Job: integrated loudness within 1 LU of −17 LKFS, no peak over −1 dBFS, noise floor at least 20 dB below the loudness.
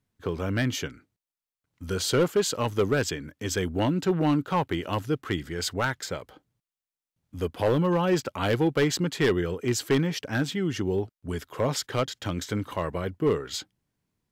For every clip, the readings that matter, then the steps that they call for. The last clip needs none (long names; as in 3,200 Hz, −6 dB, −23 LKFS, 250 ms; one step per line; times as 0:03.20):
share of clipped samples 0.9%; peaks flattened at −16.5 dBFS; integrated loudness −27.5 LKFS; sample peak −16.5 dBFS; target loudness −17.0 LKFS
→ clipped peaks rebuilt −16.5 dBFS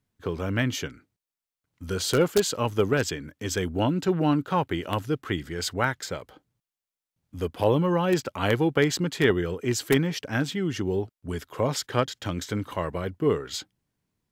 share of clipped samples 0.0%; integrated loudness −26.5 LKFS; sample peak −7.5 dBFS; target loudness −17.0 LKFS
→ level +9.5 dB
brickwall limiter −1 dBFS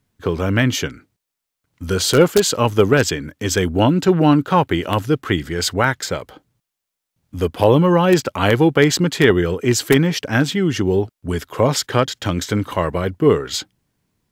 integrated loudness −17.5 LKFS; sample peak −1.0 dBFS; background noise floor −82 dBFS